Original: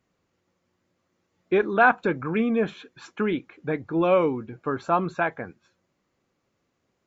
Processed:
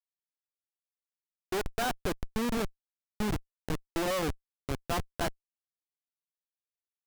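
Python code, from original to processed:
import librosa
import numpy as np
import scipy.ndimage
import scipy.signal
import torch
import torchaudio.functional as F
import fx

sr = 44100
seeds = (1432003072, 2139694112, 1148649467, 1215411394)

y = fx.cheby_harmonics(x, sr, harmonics=(2, 6, 7, 8), levels_db=(-32, -31, -19, -22), full_scale_db=-5.5)
y = fx.schmitt(y, sr, flips_db=-32.0)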